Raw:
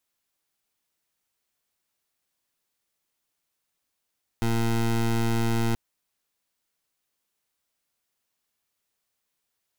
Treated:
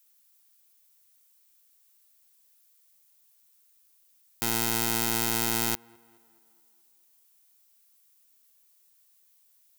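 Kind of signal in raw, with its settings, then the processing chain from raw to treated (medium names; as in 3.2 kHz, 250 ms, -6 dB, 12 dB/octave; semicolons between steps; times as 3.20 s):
pulse 115 Hz, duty 20% -23.5 dBFS 1.33 s
block-companded coder 3-bit; RIAA curve recording; tape echo 213 ms, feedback 57%, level -21.5 dB, low-pass 5.2 kHz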